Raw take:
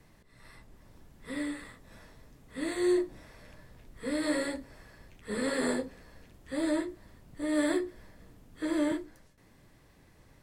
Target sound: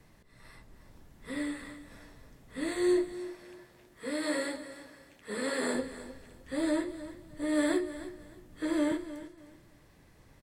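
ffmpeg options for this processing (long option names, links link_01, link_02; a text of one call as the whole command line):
ffmpeg -i in.wav -filter_complex "[0:a]asettb=1/sr,asplit=3[link_01][link_02][link_03];[link_01]atrim=end=3.124[link_04];[link_02]atrim=start=3.12:end=5.75,asetpts=PTS-STARTPTS,afade=type=in:duration=0.004:curve=qsin,afade=type=out:start_time=2.626:duration=0.004:curve=qsin,highpass=frequency=310:poles=1[link_05];[link_03]atrim=start=5.746[link_06];[link_04][link_05]acrossfade=duration=0.004:curve1=hsin:curve2=qsin[link_07];[link_07][link_06]acrossfade=duration=0.004:curve1=qsin:curve2=hsin,aecho=1:1:308|616|924:0.2|0.0499|0.0125" out.wav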